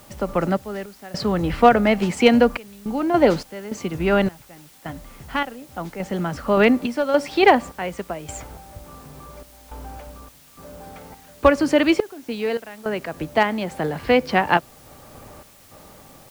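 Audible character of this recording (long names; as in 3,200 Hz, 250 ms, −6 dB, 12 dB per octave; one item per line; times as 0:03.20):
sample-and-hold tremolo, depth 100%
a quantiser's noise floor 10 bits, dither triangular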